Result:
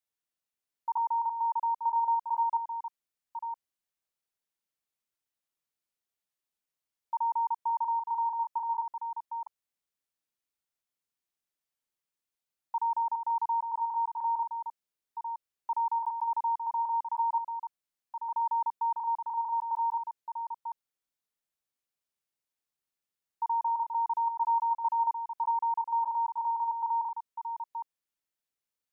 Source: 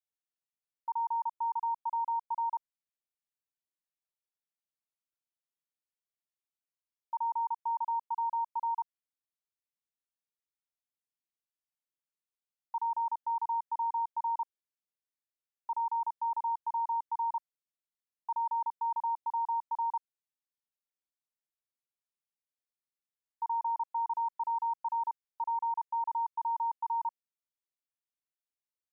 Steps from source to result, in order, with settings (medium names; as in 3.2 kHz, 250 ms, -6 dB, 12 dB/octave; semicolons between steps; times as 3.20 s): chunks repeated in reverse 592 ms, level -7 dB; 0.97–1.77 s: steep high-pass 590 Hz; trim +3 dB